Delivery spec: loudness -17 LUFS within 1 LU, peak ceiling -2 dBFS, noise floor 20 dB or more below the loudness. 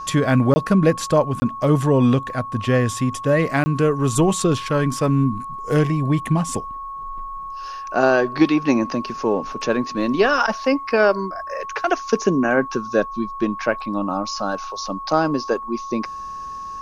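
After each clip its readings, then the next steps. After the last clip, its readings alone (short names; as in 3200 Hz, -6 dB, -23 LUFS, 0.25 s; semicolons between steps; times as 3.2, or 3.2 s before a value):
dropouts 3; longest dropout 20 ms; steady tone 1100 Hz; tone level -29 dBFS; loudness -20.5 LUFS; peak -3.0 dBFS; loudness target -17.0 LUFS
-> interpolate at 0.54/1.4/3.64, 20 ms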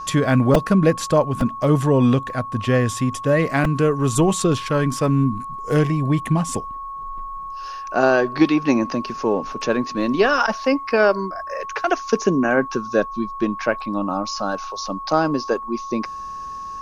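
dropouts 0; steady tone 1100 Hz; tone level -29 dBFS
-> notch 1100 Hz, Q 30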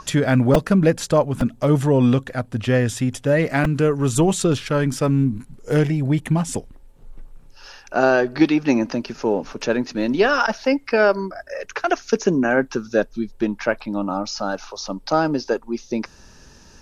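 steady tone none; loudness -20.5 LUFS; peak -1.5 dBFS; loudness target -17.0 LUFS
-> gain +3.5 dB; limiter -2 dBFS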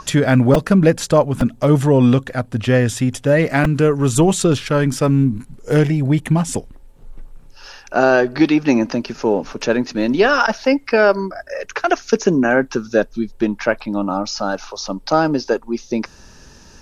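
loudness -17.0 LUFS; peak -2.0 dBFS; noise floor -45 dBFS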